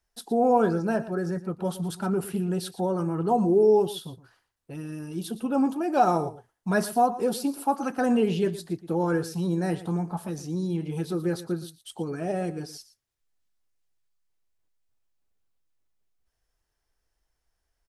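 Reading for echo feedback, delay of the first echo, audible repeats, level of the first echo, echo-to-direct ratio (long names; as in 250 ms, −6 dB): repeats not evenly spaced, 117 ms, 1, −15.5 dB, −15.5 dB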